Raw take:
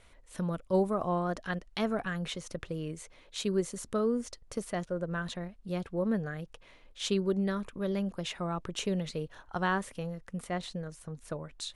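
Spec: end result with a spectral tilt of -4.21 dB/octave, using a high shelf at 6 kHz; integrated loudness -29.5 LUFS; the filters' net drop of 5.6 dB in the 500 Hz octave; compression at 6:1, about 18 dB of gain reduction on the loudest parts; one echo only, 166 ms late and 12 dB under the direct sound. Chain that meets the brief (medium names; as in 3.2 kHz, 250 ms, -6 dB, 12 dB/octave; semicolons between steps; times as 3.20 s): peaking EQ 500 Hz -7.5 dB; treble shelf 6 kHz +3.5 dB; compression 6:1, threshold -47 dBFS; delay 166 ms -12 dB; trim +20.5 dB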